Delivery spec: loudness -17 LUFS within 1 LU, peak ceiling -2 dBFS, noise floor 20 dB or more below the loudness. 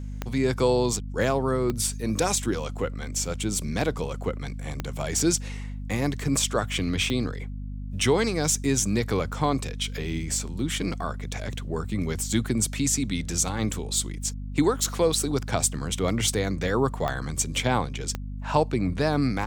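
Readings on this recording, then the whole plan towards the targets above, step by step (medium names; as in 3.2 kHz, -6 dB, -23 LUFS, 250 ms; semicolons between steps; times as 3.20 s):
clicks found 6; hum 50 Hz; highest harmonic 250 Hz; hum level -32 dBFS; loudness -26.5 LUFS; peak level -8.5 dBFS; loudness target -17.0 LUFS
-> de-click; hum notches 50/100/150/200/250 Hz; trim +9.5 dB; peak limiter -2 dBFS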